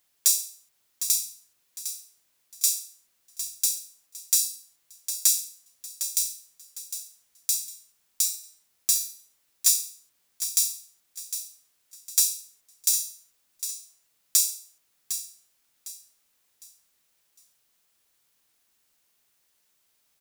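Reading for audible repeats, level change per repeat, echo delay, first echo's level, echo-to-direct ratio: 3, -9.5 dB, 0.756 s, -10.0 dB, -9.5 dB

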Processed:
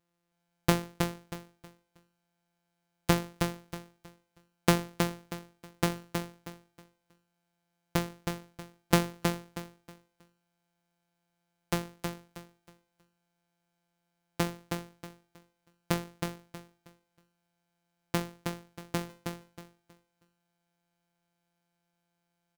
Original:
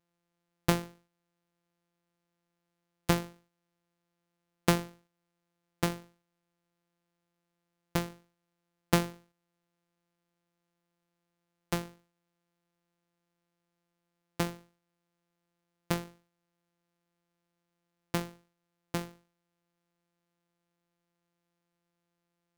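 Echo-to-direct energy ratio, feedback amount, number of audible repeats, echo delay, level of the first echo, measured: -4.5 dB, 27%, 3, 0.318 s, -5.0 dB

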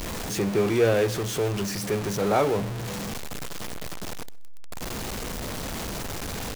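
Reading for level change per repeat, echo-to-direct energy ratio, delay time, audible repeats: -7.5 dB, -23.0 dB, 0.127 s, 2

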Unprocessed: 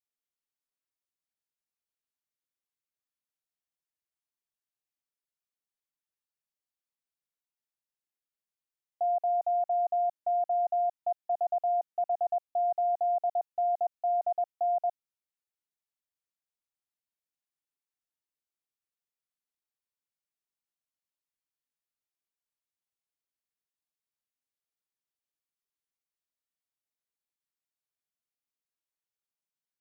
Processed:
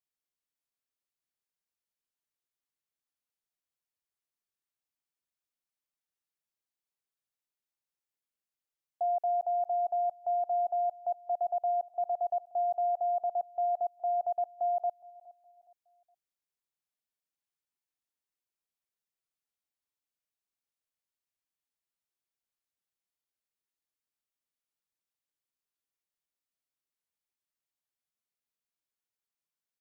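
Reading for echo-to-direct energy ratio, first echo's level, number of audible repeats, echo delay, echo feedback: -21.5 dB, -22.0 dB, 2, 0.416 s, 36%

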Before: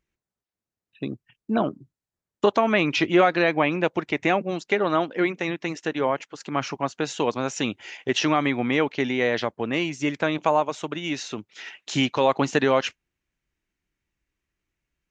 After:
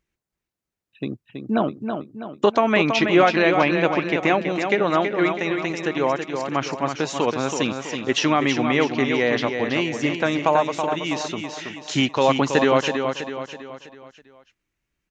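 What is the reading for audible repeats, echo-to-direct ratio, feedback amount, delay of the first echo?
5, -5.5 dB, 46%, 0.326 s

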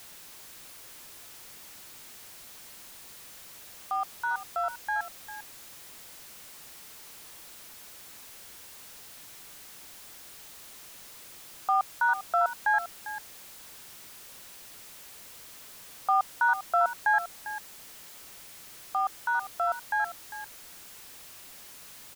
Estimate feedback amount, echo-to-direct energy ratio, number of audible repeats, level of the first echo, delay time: no steady repeat, -13.0 dB, 1, -13.0 dB, 0.399 s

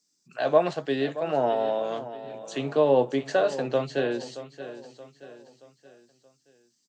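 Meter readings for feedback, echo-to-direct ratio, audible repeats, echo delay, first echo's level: 44%, -13.0 dB, 3, 0.626 s, -14.0 dB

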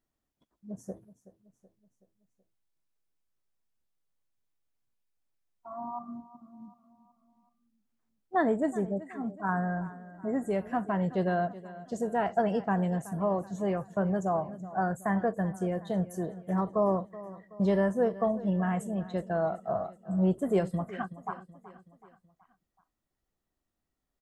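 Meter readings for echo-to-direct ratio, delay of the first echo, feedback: -15.5 dB, 0.376 s, 51%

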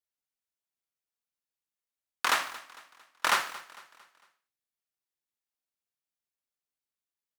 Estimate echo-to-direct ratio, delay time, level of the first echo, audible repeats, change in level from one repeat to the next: -17.0 dB, 0.226 s, -18.0 dB, 3, -7.0 dB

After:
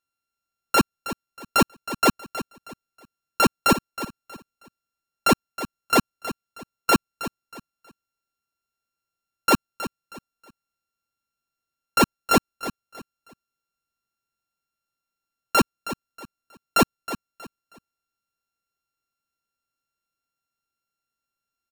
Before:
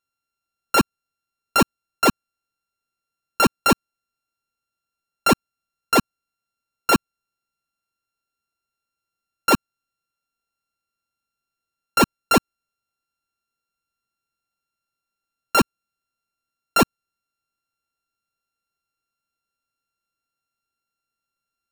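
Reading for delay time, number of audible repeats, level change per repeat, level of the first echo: 0.318 s, 3, -11.0 dB, -13.0 dB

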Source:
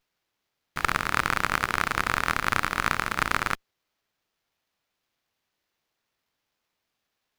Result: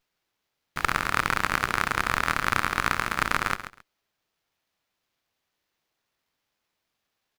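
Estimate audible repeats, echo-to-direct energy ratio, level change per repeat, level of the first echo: 2, -11.5 dB, -14.5 dB, -11.5 dB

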